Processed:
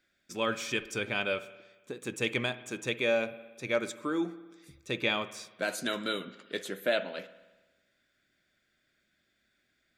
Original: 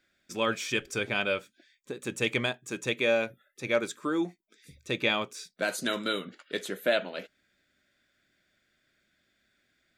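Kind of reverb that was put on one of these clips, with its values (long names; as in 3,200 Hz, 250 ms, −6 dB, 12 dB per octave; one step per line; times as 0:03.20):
spring reverb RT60 1.2 s, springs 57 ms, chirp 75 ms, DRR 14.5 dB
level −2.5 dB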